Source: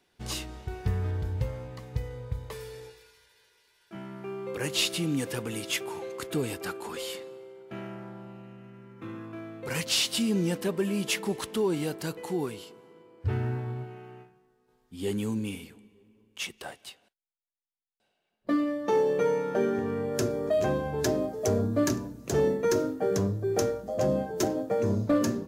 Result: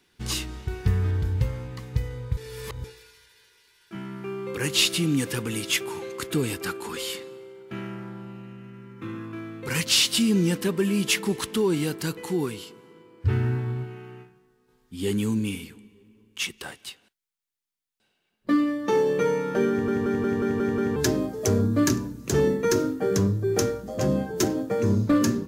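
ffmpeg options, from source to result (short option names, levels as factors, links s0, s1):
-filter_complex "[0:a]asplit=10[s0][s1][s2][s3][s4][s5][s6][s7][s8][s9];[s0]atrim=end=2.372[s10];[s1]atrim=start=2.368:end=2.842,asetpts=PTS-STARTPTS,areverse[s11];[s2]atrim=start=2.838:end=19.882[s12];[s3]atrim=start=19.698:end=19.882[s13];[s4]atrim=start=19.698:end=19.882[s14];[s5]atrim=start=19.698:end=19.882[s15];[s6]atrim=start=19.698:end=19.882[s16];[s7]atrim=start=19.698:end=19.882[s17];[s8]atrim=start=19.698:end=19.882[s18];[s9]atrim=start=20.958[s19];[s10][s11]acrossfade=d=0.004:c1=hsin:c2=hsin[s20];[s20][s12]acrossfade=d=0.004:c1=hsin:c2=hsin[s21];[s21][s13]acrossfade=d=0.004:c1=hsin:c2=hsin[s22];[s22][s14]acrossfade=d=0.004:c1=hsin:c2=hsin[s23];[s23][s15]acrossfade=d=0.004:c1=hsin:c2=hsin[s24];[s24][s16]acrossfade=d=0.004:c1=hsin:c2=hsin[s25];[s25][s17]acrossfade=d=0.004:c1=hsin:c2=hsin[s26];[s26][s18]acrossfade=d=0.004:c1=hsin:c2=hsin[s27];[s27][s19]acrossfade=d=0.004:c1=hsin:c2=hsin,equalizer=f=650:w=1.8:g=-10.5,volume=2"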